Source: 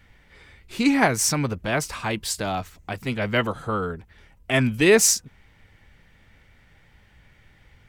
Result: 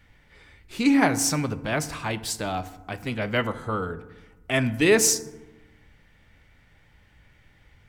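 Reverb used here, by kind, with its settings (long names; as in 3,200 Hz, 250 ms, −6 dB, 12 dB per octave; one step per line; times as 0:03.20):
feedback delay network reverb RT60 1.1 s, low-frequency decay 1.3×, high-frequency decay 0.45×, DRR 12 dB
level −2.5 dB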